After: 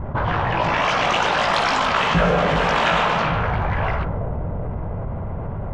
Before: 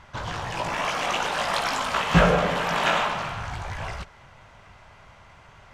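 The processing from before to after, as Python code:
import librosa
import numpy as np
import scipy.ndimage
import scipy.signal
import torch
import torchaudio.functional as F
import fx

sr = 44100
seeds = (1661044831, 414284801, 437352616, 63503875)

y = fx.air_absorb(x, sr, metres=85.0)
y = fx.echo_wet_lowpass(y, sr, ms=384, feedback_pct=56, hz=550.0, wet_db=-11.0)
y = fx.env_lowpass(y, sr, base_hz=410.0, full_db=-21.5)
y = fx.env_flatten(y, sr, amount_pct=70)
y = F.gain(torch.from_numpy(y), -2.0).numpy()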